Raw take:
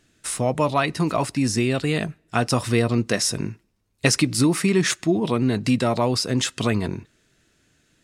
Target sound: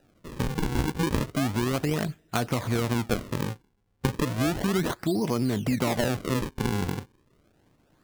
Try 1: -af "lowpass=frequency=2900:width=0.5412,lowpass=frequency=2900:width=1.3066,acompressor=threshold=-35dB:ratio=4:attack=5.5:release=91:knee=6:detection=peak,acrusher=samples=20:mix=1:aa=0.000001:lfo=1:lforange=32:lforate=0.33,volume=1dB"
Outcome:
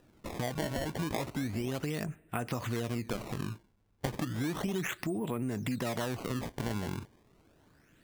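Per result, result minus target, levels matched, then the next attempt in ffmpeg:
downward compressor: peak gain reduction +8 dB; sample-and-hold swept by an LFO: distortion −4 dB
-af "lowpass=frequency=2900:width=0.5412,lowpass=frequency=2900:width=1.3066,acompressor=threshold=-24dB:ratio=4:attack=5.5:release=91:knee=6:detection=peak,acrusher=samples=20:mix=1:aa=0.000001:lfo=1:lforange=32:lforate=0.33,volume=1dB"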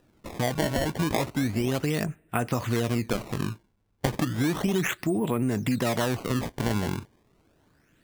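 sample-and-hold swept by an LFO: distortion −5 dB
-af "lowpass=frequency=2900:width=0.5412,lowpass=frequency=2900:width=1.3066,acompressor=threshold=-24dB:ratio=4:attack=5.5:release=91:knee=6:detection=peak,acrusher=samples=40:mix=1:aa=0.000001:lfo=1:lforange=64:lforate=0.33,volume=1dB"

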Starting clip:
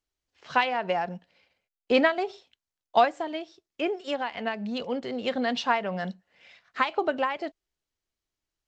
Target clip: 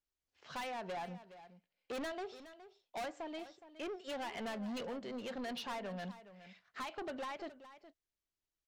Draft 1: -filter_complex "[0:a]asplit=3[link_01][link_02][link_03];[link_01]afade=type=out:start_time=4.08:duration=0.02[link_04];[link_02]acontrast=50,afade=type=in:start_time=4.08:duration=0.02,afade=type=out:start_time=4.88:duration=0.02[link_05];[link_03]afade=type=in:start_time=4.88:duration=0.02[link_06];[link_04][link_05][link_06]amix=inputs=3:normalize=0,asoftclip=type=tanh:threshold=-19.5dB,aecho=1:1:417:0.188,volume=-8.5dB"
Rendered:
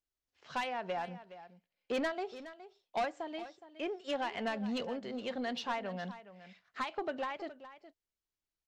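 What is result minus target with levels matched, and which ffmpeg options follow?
soft clipping: distortion −7 dB
-filter_complex "[0:a]asplit=3[link_01][link_02][link_03];[link_01]afade=type=out:start_time=4.08:duration=0.02[link_04];[link_02]acontrast=50,afade=type=in:start_time=4.08:duration=0.02,afade=type=out:start_time=4.88:duration=0.02[link_05];[link_03]afade=type=in:start_time=4.88:duration=0.02[link_06];[link_04][link_05][link_06]amix=inputs=3:normalize=0,asoftclip=type=tanh:threshold=-30dB,aecho=1:1:417:0.188,volume=-8.5dB"

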